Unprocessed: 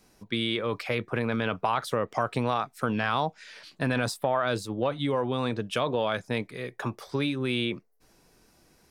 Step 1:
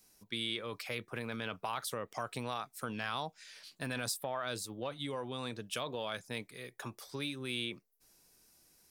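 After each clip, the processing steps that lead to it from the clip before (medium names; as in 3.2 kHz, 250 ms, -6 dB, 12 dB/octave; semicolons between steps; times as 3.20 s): pre-emphasis filter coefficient 0.8; trim +1 dB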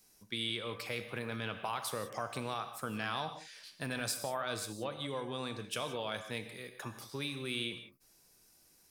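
gated-style reverb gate 200 ms flat, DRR 7.5 dB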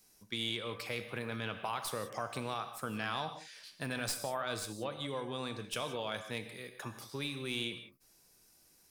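tracing distortion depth 0.021 ms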